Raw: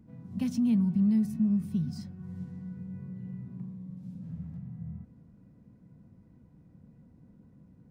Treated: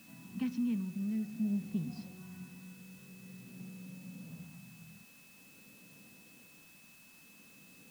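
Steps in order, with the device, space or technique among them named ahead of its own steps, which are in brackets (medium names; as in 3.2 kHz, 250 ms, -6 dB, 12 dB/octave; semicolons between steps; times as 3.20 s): shortwave radio (band-pass 300–2900 Hz; tremolo 0.5 Hz, depth 58%; LFO notch saw up 0.45 Hz 450–1900 Hz; whistle 2.6 kHz -64 dBFS; white noise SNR 20 dB); trim +3.5 dB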